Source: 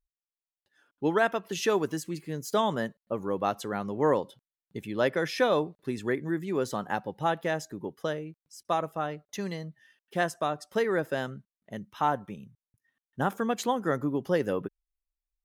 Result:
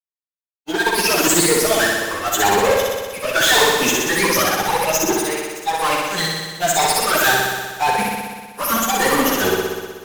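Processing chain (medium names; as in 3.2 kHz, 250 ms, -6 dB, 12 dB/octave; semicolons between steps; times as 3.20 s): drifting ripple filter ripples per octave 0.91, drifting +1.2 Hz, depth 21 dB; gate -47 dBFS, range -14 dB; high-pass 110 Hz 24 dB/octave; tilt EQ +4.5 dB/octave; in parallel at +3 dB: peak limiter -15 dBFS, peak gain reduction 11.5 dB; on the sum: slow attack 402 ms; dynamic bell 760 Hz, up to +4 dB, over -34 dBFS, Q 0.87; fuzz box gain 31 dB, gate -40 dBFS; plain phase-vocoder stretch 0.65×; on a send: flutter echo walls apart 10.6 m, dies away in 1.5 s; on the sum: trim +1 dB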